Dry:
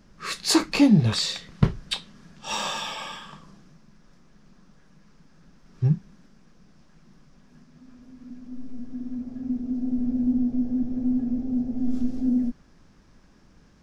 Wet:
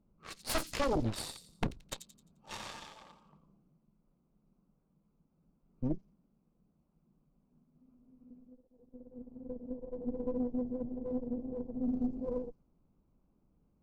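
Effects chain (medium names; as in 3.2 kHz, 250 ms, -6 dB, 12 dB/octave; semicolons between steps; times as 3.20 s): local Wiener filter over 25 samples; treble shelf 5.2 kHz -5 dB; Chebyshev shaper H 3 -7 dB, 8 -18 dB, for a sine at -4 dBFS; wavefolder -16.5 dBFS; on a send: feedback echo behind a high-pass 87 ms, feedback 38%, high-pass 4.7 kHz, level -6.5 dB; on the sum: trim -5.5 dB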